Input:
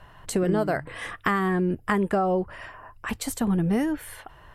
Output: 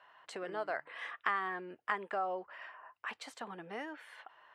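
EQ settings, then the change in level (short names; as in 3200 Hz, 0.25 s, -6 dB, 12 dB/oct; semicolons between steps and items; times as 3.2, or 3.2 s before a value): BPF 730–3600 Hz; -7.0 dB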